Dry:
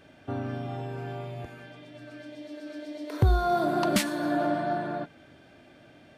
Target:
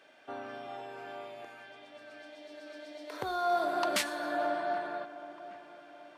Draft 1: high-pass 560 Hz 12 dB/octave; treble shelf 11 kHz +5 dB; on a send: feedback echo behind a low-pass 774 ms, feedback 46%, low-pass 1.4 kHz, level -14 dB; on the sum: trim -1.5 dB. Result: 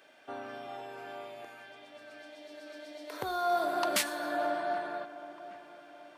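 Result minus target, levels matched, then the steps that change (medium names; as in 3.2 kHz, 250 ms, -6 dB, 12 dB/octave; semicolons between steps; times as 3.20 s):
8 kHz band +3.0 dB
change: treble shelf 11 kHz -6.5 dB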